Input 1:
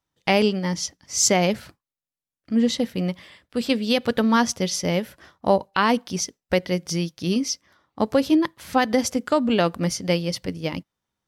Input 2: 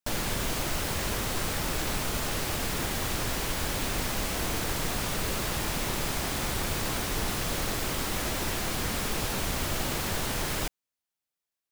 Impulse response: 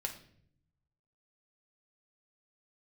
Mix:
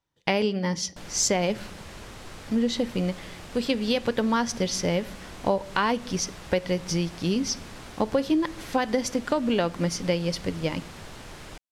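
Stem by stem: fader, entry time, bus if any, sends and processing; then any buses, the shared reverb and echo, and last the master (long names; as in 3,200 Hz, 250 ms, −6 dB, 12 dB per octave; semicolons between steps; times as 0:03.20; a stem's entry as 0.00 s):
−1.0 dB, 0.00 s, send −11.5 dB, notch filter 1,300 Hz, Q 18
−11.0 dB, 0.90 s, no send, low-pass filter 11,000 Hz 12 dB per octave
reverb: on, RT60 0.60 s, pre-delay 6 ms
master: high-shelf EQ 8,300 Hz −8.5 dB; downward compressor 3 to 1, threshold −21 dBFS, peak gain reduction 7 dB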